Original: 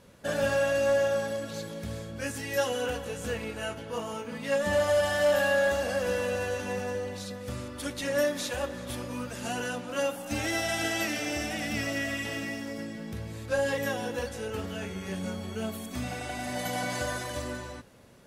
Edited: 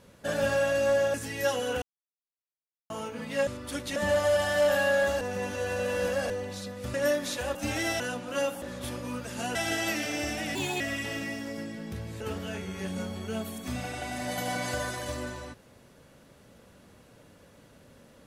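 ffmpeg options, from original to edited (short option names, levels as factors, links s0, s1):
-filter_complex "[0:a]asplit=16[s0][s1][s2][s3][s4][s5][s6][s7][s8][s9][s10][s11][s12][s13][s14][s15];[s0]atrim=end=1.142[s16];[s1]atrim=start=2.268:end=2.95,asetpts=PTS-STARTPTS,afade=t=out:st=0.678:d=0.004:c=hsin[s17];[s2]atrim=start=2.95:end=4.03,asetpts=PTS-STARTPTS,volume=0[s18];[s3]atrim=start=4.03:end=4.602,asetpts=PTS-STARTPTS,afade=t=in:d=0.004:c=hsin[s19];[s4]atrim=start=7.578:end=8.072[s20];[s5]atrim=start=4.598:end=5.852[s21];[s6]atrim=start=5.848:end=6.942,asetpts=PTS-STARTPTS,areverse[s22];[s7]atrim=start=6.938:end=7.582[s23];[s8]atrim=start=8.068:end=8.682[s24];[s9]atrim=start=10.228:end=10.682[s25];[s10]atrim=start=9.608:end=10.232[s26];[s11]atrim=start=8.678:end=9.612[s27];[s12]atrim=start=10.678:end=11.684[s28];[s13]atrim=start=11.68:end=12.01,asetpts=PTS-STARTPTS,asetrate=57330,aresample=44100[s29];[s14]atrim=start=12.006:end=13.412[s30];[s15]atrim=start=14.478[s31];[s17][s18][s19]concat=n=3:v=0:a=1[s32];[s16][s32]acrossfade=d=0.004:c1=hsin:c2=hsin[s33];[s33][s20]acrossfade=d=0.004:c1=hsin:c2=hsin[s34];[s34][s21]acrossfade=d=0.004:c1=hsin:c2=hsin[s35];[s35][s22]acrossfade=d=0.004:c1=hsin:c2=hsin[s36];[s36][s23]acrossfade=d=0.004:c1=hsin:c2=hsin[s37];[s37][s24]acrossfade=d=0.004:c1=hsin:c2=hsin[s38];[s38][s25]acrossfade=d=0.004:c1=hsin:c2=hsin[s39];[s39][s26]acrossfade=d=0.004:c1=hsin:c2=hsin[s40];[s40][s27]acrossfade=d=0.004:c1=hsin:c2=hsin[s41];[s41][s28]acrossfade=d=0.004:c1=hsin:c2=hsin[s42];[s42][s29]acrossfade=d=0.004:c1=hsin:c2=hsin[s43];[s43][s30]acrossfade=d=0.004:c1=hsin:c2=hsin[s44];[s44][s31]acrossfade=d=0.004:c1=hsin:c2=hsin"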